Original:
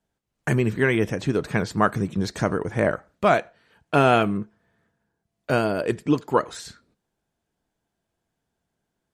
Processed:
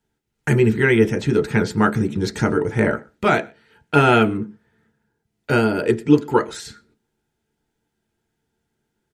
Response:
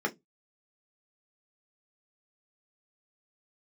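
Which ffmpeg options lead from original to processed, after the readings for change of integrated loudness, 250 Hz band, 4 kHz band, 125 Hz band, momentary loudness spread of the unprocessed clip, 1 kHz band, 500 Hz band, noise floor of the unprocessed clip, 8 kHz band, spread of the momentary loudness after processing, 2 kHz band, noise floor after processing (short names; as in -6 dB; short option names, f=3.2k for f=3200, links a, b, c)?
+4.5 dB, +6.0 dB, +4.0 dB, +5.0 dB, 12 LU, +2.0 dB, +4.0 dB, -80 dBFS, +3.0 dB, 10 LU, +4.5 dB, -77 dBFS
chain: -filter_complex "[0:a]asplit=2[a][b];[b]adelay=122.4,volume=-27dB,highshelf=f=4k:g=-2.76[c];[a][c]amix=inputs=2:normalize=0,asplit=2[d][e];[1:a]atrim=start_sample=2205,lowpass=2.3k[f];[e][f]afir=irnorm=-1:irlink=0,volume=-10.5dB[g];[d][g]amix=inputs=2:normalize=0,volume=3dB"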